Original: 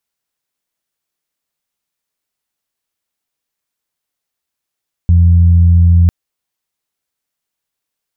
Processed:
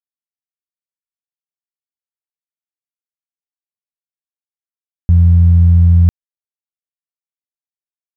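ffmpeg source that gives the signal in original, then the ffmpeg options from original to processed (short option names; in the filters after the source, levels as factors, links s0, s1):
-f lavfi -i "aevalsrc='0.596*sin(2*PI*85.9*t)+0.133*sin(2*PI*171.8*t)':d=1:s=44100"
-af "aeval=exprs='sgn(val(0))*max(abs(val(0))-0.0133,0)':c=same"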